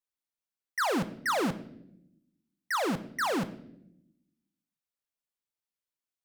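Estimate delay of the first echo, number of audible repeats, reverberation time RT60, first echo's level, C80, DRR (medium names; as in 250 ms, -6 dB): no echo, no echo, 0.80 s, no echo, 17.5 dB, 11.0 dB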